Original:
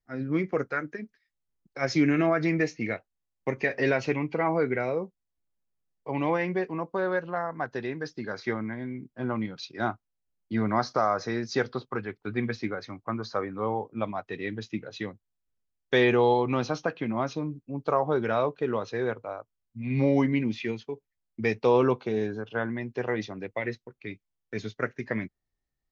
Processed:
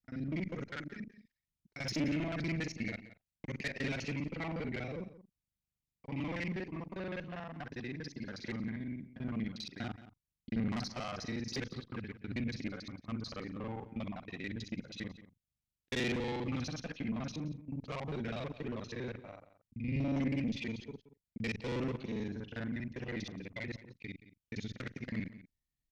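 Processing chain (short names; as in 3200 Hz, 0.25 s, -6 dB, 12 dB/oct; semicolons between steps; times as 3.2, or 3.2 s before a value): local time reversal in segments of 40 ms; tube stage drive 22 dB, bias 0.3; band shelf 750 Hz -10 dB 2.5 oct; added harmonics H 2 -9 dB, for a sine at -19.5 dBFS; outdoor echo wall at 30 m, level -15 dB; gain -2.5 dB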